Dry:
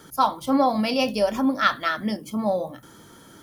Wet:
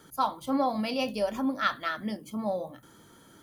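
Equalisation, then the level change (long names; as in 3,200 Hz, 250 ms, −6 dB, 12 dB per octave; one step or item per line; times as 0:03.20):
notch filter 5,400 Hz, Q 9.6
−7.0 dB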